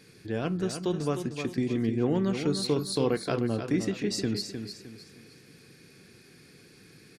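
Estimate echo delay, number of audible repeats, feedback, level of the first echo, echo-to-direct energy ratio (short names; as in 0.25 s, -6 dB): 0.307 s, 3, 35%, -8.0 dB, -7.5 dB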